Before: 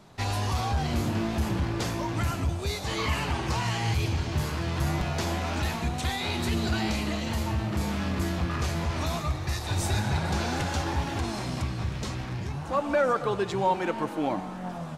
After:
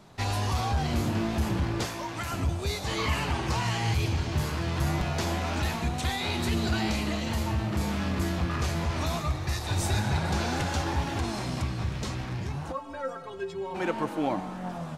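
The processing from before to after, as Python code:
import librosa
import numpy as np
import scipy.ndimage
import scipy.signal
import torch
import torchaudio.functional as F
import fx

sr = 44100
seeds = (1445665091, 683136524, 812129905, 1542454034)

y = fx.low_shelf(x, sr, hz=380.0, db=-11.0, at=(1.85, 2.32))
y = fx.stiff_resonator(y, sr, f0_hz=80.0, decay_s=0.43, stiffness=0.03, at=(12.71, 13.74), fade=0.02)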